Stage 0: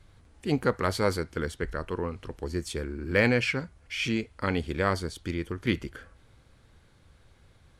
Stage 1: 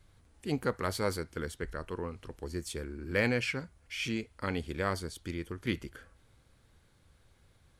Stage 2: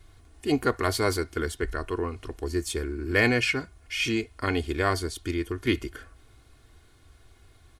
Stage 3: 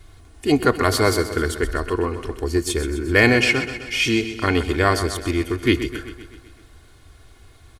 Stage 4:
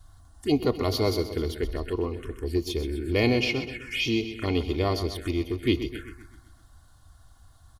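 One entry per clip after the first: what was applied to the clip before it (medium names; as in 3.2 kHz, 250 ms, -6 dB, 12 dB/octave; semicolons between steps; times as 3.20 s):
treble shelf 8.8 kHz +9.5 dB; trim -6 dB
comb 2.8 ms, depth 65%; trim +6.5 dB
feedback delay 128 ms, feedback 59%, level -11.5 dB; trim +7 dB
touch-sensitive phaser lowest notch 370 Hz, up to 1.6 kHz, full sweep at -18.5 dBFS; trim -5 dB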